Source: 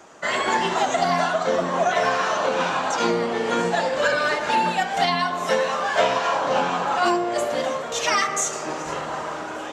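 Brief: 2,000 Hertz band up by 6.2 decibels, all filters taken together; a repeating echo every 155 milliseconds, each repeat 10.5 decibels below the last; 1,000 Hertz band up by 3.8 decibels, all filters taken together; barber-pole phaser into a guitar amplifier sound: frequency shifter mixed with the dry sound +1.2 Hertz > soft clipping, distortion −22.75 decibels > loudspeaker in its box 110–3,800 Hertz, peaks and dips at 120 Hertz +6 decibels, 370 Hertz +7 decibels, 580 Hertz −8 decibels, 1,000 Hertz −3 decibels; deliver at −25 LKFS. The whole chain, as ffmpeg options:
ffmpeg -i in.wav -filter_complex "[0:a]equalizer=frequency=1000:width_type=o:gain=6,equalizer=frequency=2000:width_type=o:gain=6,aecho=1:1:155|310|465:0.299|0.0896|0.0269,asplit=2[link_01][link_02];[link_02]afreqshift=1.2[link_03];[link_01][link_03]amix=inputs=2:normalize=1,asoftclip=threshold=-8dB,highpass=110,equalizer=frequency=120:width_type=q:width=4:gain=6,equalizer=frequency=370:width_type=q:width=4:gain=7,equalizer=frequency=580:width_type=q:width=4:gain=-8,equalizer=frequency=1000:width_type=q:width=4:gain=-3,lowpass=frequency=3800:width=0.5412,lowpass=frequency=3800:width=1.3066,volume=-3dB" out.wav

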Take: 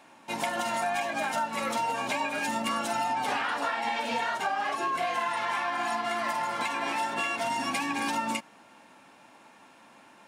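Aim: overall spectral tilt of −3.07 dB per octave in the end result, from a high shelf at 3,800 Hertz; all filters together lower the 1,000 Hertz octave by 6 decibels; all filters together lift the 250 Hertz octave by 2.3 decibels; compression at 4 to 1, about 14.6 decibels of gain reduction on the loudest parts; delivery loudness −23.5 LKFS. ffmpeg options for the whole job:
ffmpeg -i in.wav -af "equalizer=frequency=250:width_type=o:gain=3,equalizer=frequency=1000:width_type=o:gain=-7.5,highshelf=frequency=3800:gain=-3.5,acompressor=threshold=-47dB:ratio=4,volume=23.5dB" out.wav

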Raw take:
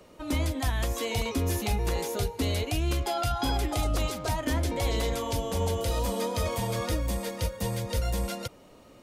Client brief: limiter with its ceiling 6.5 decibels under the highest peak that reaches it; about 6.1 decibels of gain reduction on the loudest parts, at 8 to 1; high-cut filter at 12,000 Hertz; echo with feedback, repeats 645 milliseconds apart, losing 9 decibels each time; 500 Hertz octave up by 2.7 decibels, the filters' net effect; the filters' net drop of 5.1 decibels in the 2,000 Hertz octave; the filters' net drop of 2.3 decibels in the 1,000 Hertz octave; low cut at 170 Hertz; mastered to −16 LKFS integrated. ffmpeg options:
ffmpeg -i in.wav -af "highpass=170,lowpass=12000,equalizer=frequency=500:width_type=o:gain=4.5,equalizer=frequency=1000:width_type=o:gain=-4,equalizer=frequency=2000:width_type=o:gain=-5.5,acompressor=threshold=-31dB:ratio=8,alimiter=level_in=4dB:limit=-24dB:level=0:latency=1,volume=-4dB,aecho=1:1:645|1290|1935|2580:0.355|0.124|0.0435|0.0152,volume=20.5dB" out.wav

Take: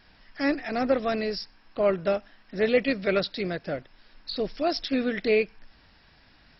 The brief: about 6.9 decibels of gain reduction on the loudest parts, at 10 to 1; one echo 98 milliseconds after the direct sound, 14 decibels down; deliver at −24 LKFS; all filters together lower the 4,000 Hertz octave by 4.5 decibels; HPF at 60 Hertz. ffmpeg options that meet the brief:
ffmpeg -i in.wav -af "highpass=60,equalizer=frequency=4000:width_type=o:gain=-5.5,acompressor=threshold=-24dB:ratio=10,aecho=1:1:98:0.2,volume=7dB" out.wav

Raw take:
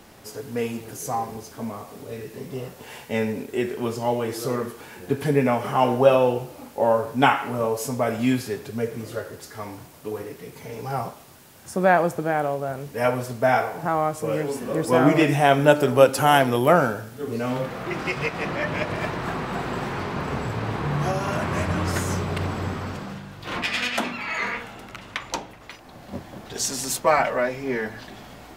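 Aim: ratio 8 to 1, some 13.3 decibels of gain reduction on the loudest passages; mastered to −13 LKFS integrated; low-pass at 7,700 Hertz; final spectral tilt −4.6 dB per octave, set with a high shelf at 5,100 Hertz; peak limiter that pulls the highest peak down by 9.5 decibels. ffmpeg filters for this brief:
ffmpeg -i in.wav -af "lowpass=7700,highshelf=frequency=5100:gain=8,acompressor=threshold=-23dB:ratio=8,volume=17.5dB,alimiter=limit=-1.5dB:level=0:latency=1" out.wav

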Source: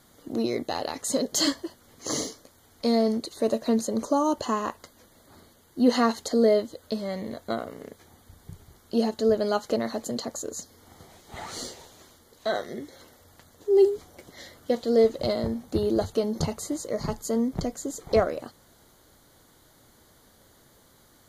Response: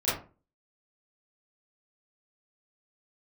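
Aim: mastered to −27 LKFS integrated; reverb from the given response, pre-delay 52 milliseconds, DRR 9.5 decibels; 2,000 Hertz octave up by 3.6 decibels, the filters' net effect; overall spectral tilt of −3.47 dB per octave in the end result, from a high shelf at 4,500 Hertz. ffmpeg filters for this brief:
-filter_complex "[0:a]equalizer=frequency=2000:width_type=o:gain=3,highshelf=frequency=4500:gain=8,asplit=2[link_01][link_02];[1:a]atrim=start_sample=2205,adelay=52[link_03];[link_02][link_03]afir=irnorm=-1:irlink=0,volume=-20dB[link_04];[link_01][link_04]amix=inputs=2:normalize=0,volume=-1.5dB"

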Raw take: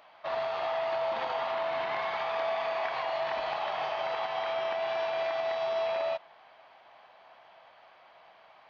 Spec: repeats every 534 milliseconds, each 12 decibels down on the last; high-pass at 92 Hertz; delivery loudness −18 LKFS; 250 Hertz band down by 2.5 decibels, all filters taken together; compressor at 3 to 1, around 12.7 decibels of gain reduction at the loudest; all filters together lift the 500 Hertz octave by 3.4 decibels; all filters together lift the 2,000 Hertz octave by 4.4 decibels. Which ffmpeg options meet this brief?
ffmpeg -i in.wav -af "highpass=92,equalizer=frequency=250:width_type=o:gain=-7,equalizer=frequency=500:width_type=o:gain=6,equalizer=frequency=2000:width_type=o:gain=5,acompressor=threshold=-43dB:ratio=3,aecho=1:1:534|1068|1602:0.251|0.0628|0.0157,volume=23dB" out.wav

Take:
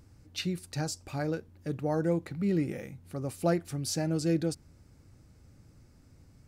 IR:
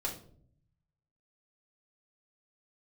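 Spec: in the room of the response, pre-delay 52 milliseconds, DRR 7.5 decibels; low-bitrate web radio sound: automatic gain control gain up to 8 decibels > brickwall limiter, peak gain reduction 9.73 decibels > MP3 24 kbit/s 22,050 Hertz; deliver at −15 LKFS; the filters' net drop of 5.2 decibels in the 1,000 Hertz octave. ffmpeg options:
-filter_complex "[0:a]equalizer=frequency=1000:width_type=o:gain=-8.5,asplit=2[link_01][link_02];[1:a]atrim=start_sample=2205,adelay=52[link_03];[link_02][link_03]afir=irnorm=-1:irlink=0,volume=-10.5dB[link_04];[link_01][link_04]amix=inputs=2:normalize=0,dynaudnorm=maxgain=8dB,alimiter=level_in=3dB:limit=-24dB:level=0:latency=1,volume=-3dB,volume=22dB" -ar 22050 -c:a libmp3lame -b:a 24k

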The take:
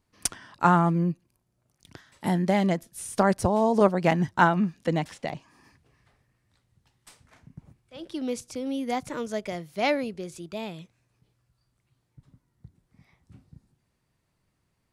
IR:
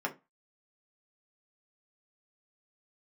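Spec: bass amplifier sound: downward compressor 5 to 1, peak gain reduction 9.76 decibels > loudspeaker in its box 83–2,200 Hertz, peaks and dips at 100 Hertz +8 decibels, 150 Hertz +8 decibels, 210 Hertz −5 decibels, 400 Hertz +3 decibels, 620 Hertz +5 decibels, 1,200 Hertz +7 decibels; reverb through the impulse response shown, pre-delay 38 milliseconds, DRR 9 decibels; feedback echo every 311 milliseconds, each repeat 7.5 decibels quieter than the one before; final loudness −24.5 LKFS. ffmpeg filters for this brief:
-filter_complex "[0:a]aecho=1:1:311|622|933|1244|1555:0.422|0.177|0.0744|0.0312|0.0131,asplit=2[link_01][link_02];[1:a]atrim=start_sample=2205,adelay=38[link_03];[link_02][link_03]afir=irnorm=-1:irlink=0,volume=-14.5dB[link_04];[link_01][link_04]amix=inputs=2:normalize=0,acompressor=threshold=-23dB:ratio=5,highpass=frequency=83:width=0.5412,highpass=frequency=83:width=1.3066,equalizer=frequency=100:width_type=q:width=4:gain=8,equalizer=frequency=150:width_type=q:width=4:gain=8,equalizer=frequency=210:width_type=q:width=4:gain=-5,equalizer=frequency=400:width_type=q:width=4:gain=3,equalizer=frequency=620:width_type=q:width=4:gain=5,equalizer=frequency=1200:width_type=q:width=4:gain=7,lowpass=frequency=2200:width=0.5412,lowpass=frequency=2200:width=1.3066,volume=3dB"

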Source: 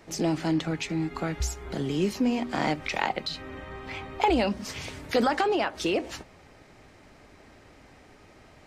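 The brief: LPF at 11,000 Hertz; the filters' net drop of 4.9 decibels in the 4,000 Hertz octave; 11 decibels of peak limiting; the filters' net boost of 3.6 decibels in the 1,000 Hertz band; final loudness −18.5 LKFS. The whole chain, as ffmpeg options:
ffmpeg -i in.wav -af "lowpass=11000,equalizer=frequency=1000:width_type=o:gain=5,equalizer=frequency=4000:width_type=o:gain=-7,volume=11dB,alimiter=limit=-6dB:level=0:latency=1" out.wav

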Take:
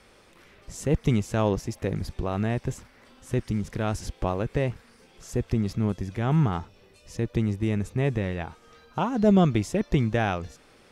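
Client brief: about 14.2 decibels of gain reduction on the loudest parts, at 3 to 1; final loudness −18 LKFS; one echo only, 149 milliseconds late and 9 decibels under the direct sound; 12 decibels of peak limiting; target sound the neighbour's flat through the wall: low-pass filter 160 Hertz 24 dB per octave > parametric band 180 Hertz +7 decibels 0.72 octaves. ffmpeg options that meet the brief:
ffmpeg -i in.wav -af "acompressor=threshold=-35dB:ratio=3,alimiter=level_in=10dB:limit=-24dB:level=0:latency=1,volume=-10dB,lowpass=frequency=160:width=0.5412,lowpass=frequency=160:width=1.3066,equalizer=frequency=180:width_type=o:width=0.72:gain=7,aecho=1:1:149:0.355,volume=27.5dB" out.wav

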